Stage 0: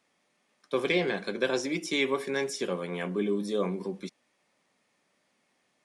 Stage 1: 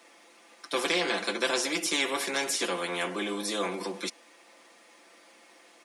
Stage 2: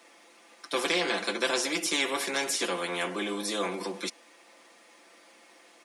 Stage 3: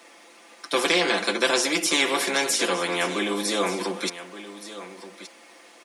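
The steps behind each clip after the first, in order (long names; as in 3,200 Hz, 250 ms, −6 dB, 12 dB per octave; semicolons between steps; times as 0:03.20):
Chebyshev high-pass filter 250 Hz, order 4; comb filter 5.9 ms, depth 75%; every bin compressed towards the loudest bin 2 to 1
no processing that can be heard
single-tap delay 1,173 ms −14 dB; level +6 dB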